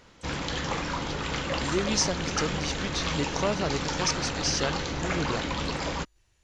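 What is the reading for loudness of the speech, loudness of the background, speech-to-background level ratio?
−30.5 LKFS, −30.5 LKFS, 0.0 dB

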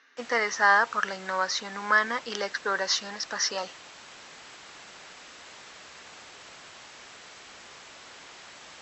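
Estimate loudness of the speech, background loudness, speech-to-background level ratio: −26.5 LKFS, −46.0 LKFS, 19.5 dB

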